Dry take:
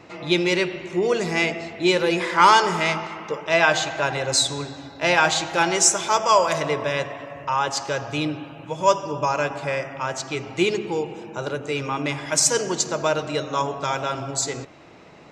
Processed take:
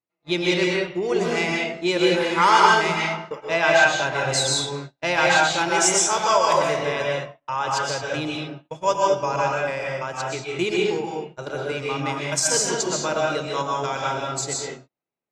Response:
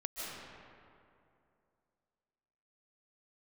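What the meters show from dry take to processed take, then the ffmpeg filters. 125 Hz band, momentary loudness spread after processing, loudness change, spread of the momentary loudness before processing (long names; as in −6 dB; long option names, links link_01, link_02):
−0.5 dB, 12 LU, 0.0 dB, 12 LU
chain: -filter_complex "[0:a]agate=range=-44dB:threshold=-29dB:ratio=16:detection=peak[link_01];[1:a]atrim=start_sample=2205,afade=type=out:start_time=0.33:duration=0.01,atrim=end_sample=14994,asetrate=52920,aresample=44100[link_02];[link_01][link_02]afir=irnorm=-1:irlink=0,volume=1.5dB"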